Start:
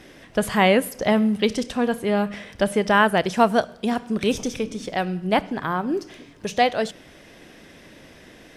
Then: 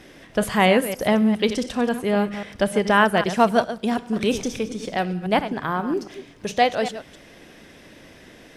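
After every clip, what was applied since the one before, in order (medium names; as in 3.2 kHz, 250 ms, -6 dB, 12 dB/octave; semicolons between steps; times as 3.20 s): chunks repeated in reverse 135 ms, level -11 dB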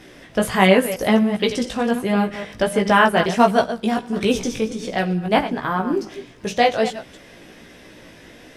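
chorus 1.4 Hz, delay 15.5 ms, depth 2.7 ms; trim +5.5 dB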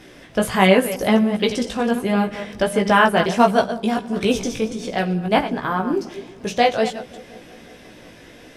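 band-stop 1.9 kHz, Q 30; feedback echo behind a low-pass 178 ms, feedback 73%, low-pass 610 Hz, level -19 dB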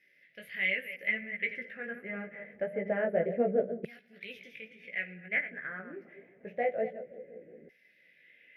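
LFO band-pass saw down 0.26 Hz 380–5300 Hz; FFT filter 110 Hz 0 dB, 160 Hz +10 dB, 300 Hz -2 dB, 560 Hz +3 dB, 990 Hz -28 dB, 2 kHz +10 dB, 3.5 kHz -18 dB, 8 kHz -28 dB, 12 kHz +2 dB; trim -5.5 dB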